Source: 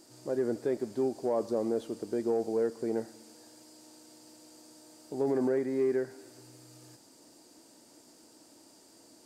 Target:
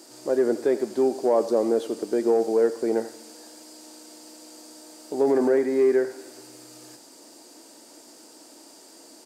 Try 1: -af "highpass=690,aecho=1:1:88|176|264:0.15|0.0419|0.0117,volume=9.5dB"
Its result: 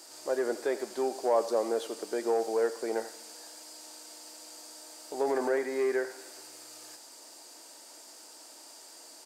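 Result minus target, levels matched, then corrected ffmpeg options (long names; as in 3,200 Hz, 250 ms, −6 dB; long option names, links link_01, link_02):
250 Hz band −4.0 dB
-af "highpass=280,aecho=1:1:88|176|264:0.15|0.0419|0.0117,volume=9.5dB"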